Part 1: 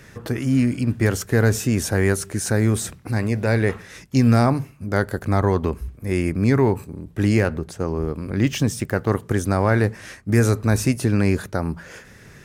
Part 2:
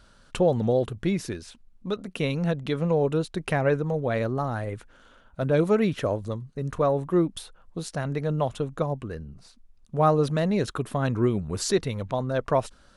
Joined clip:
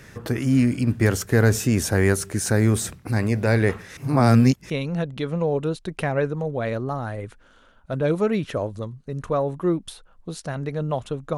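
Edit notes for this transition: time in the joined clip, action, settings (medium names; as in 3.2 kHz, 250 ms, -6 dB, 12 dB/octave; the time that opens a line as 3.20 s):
part 1
3.97–4.70 s: reverse
4.70 s: go over to part 2 from 2.19 s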